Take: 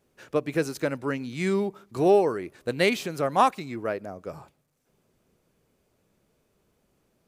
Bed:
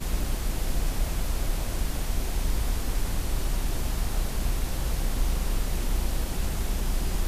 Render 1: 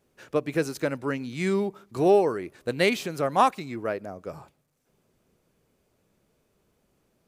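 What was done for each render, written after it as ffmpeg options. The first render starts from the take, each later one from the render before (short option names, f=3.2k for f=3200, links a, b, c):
-af anull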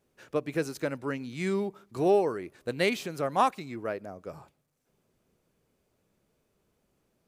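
-af "volume=-4dB"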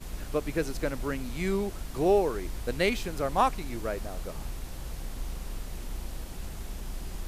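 -filter_complex "[1:a]volume=-10dB[a];[0:a][a]amix=inputs=2:normalize=0"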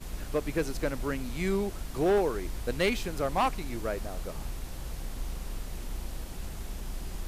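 -af "asoftclip=type=hard:threshold=-20dB"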